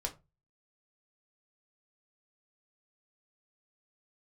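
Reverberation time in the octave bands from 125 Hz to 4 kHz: 0.45 s, 0.30 s, 0.25 s, 0.25 s, 0.20 s, 0.15 s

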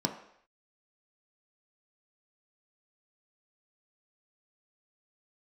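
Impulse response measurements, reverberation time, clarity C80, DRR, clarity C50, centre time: no single decay rate, 11.5 dB, 3.0 dB, 9.0 dB, 18 ms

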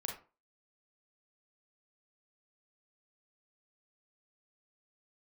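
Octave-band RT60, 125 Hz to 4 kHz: 0.35 s, 0.35 s, 0.35 s, 0.35 s, 0.30 s, 0.20 s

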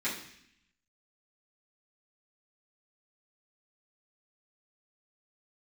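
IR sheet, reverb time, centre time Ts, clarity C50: 0.70 s, 31 ms, 6.0 dB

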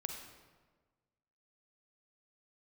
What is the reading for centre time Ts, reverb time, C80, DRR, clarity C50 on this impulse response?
40 ms, 1.4 s, 6.0 dB, 3.5 dB, 4.0 dB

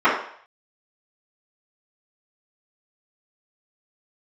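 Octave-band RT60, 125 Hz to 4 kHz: 0.55 s, 0.45 s, 0.55 s, 0.60 s, 0.60 s, 0.60 s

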